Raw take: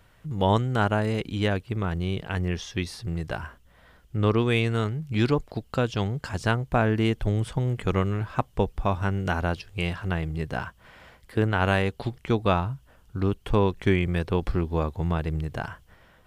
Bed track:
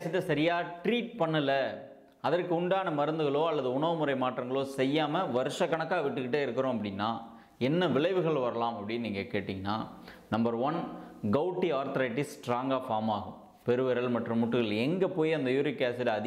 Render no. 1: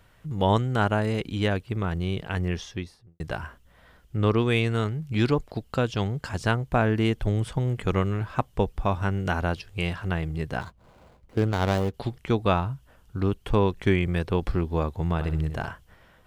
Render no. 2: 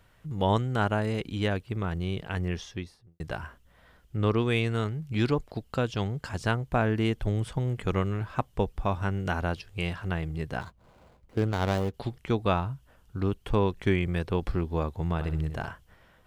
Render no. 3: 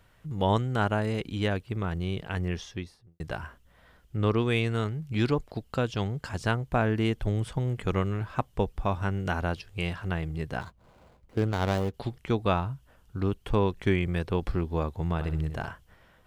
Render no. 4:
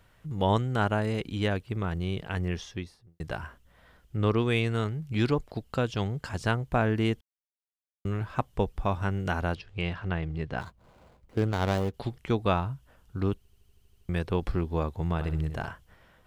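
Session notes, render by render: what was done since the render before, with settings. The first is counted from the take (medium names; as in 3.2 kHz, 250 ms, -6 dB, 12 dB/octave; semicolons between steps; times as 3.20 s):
2.52–3.20 s: studio fade out; 10.61–11.94 s: median filter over 25 samples; 15.14–15.71 s: flutter echo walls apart 11.1 m, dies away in 0.45 s
trim -3 dB
no audible change
7.21–8.05 s: mute; 9.55–10.58 s: low-pass 4.2 kHz; 13.37 s: stutter in place 0.08 s, 9 plays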